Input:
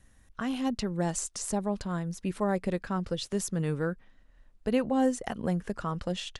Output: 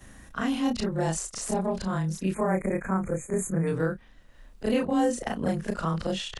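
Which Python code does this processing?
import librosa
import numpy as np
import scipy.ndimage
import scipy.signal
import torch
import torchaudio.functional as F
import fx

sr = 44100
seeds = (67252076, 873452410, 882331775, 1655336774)

y = fx.frame_reverse(x, sr, frame_ms=74.0)
y = fx.spec_erase(y, sr, start_s=2.34, length_s=1.33, low_hz=2500.0, high_hz=6300.0)
y = fx.band_squash(y, sr, depth_pct=40)
y = y * librosa.db_to_amplitude(6.5)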